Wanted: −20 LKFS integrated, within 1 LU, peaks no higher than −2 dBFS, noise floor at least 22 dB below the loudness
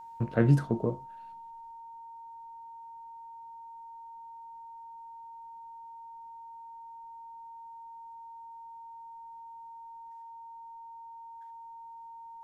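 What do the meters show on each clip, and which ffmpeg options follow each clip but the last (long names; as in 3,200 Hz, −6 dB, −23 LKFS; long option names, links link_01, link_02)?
interfering tone 920 Hz; level of the tone −44 dBFS; integrated loudness −38.0 LKFS; sample peak −11.0 dBFS; target loudness −20.0 LKFS
→ -af "bandreject=frequency=920:width=30"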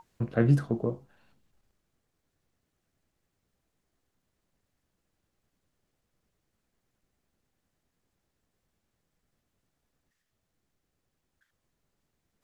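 interfering tone none found; integrated loudness −27.5 LKFS; sample peak −11.0 dBFS; target loudness −20.0 LKFS
→ -af "volume=7.5dB"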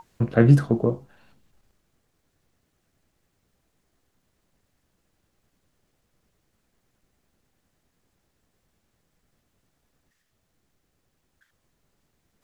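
integrated loudness −20.0 LKFS; sample peak −3.5 dBFS; background noise floor −74 dBFS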